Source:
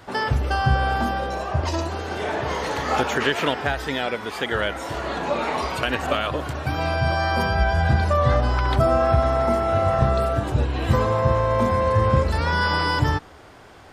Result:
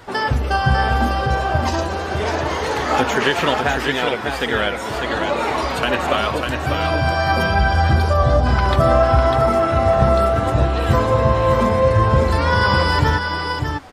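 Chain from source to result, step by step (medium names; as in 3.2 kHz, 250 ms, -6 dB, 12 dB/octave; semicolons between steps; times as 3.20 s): delay 599 ms -5 dB; flange 0.74 Hz, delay 2 ms, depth 3.8 ms, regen +66%; 7.88–8.45 s: peaking EQ 2.1 kHz -1.5 dB -> -12.5 dB 1.2 oct; trim +8 dB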